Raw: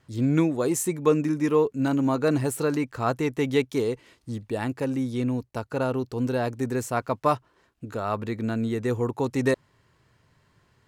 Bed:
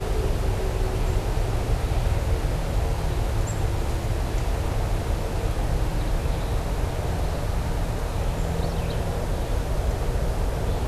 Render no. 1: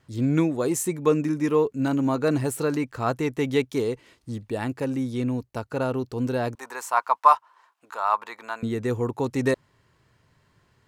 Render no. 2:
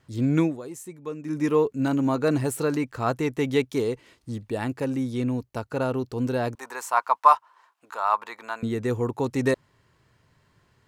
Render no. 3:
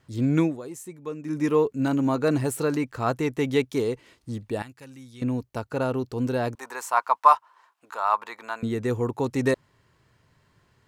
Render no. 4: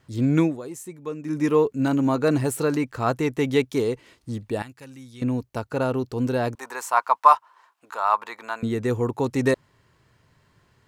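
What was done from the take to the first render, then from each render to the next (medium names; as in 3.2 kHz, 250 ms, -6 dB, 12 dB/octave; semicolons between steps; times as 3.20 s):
6.55–8.63 s: resonant high-pass 960 Hz, resonance Q 4.2
0.46–1.38 s: dip -13.5 dB, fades 0.15 s
4.62–5.22 s: amplifier tone stack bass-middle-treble 5-5-5
trim +2 dB; peak limiter -2 dBFS, peak gain reduction 1 dB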